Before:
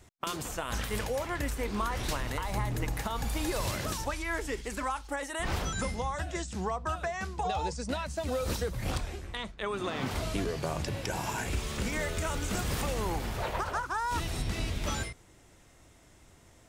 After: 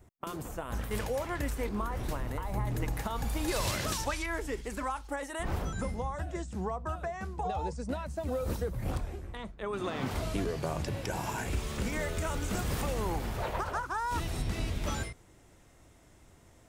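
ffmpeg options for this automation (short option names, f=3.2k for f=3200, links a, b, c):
-af "asetnsamples=n=441:p=0,asendcmd='0.91 equalizer g -4;1.69 equalizer g -12.5;2.67 equalizer g -4.5;3.48 equalizer g 3;4.26 equalizer g -5.5;5.43 equalizer g -11.5;9.73 equalizer g -4',equalizer=f=4.4k:t=o:w=3:g=-13"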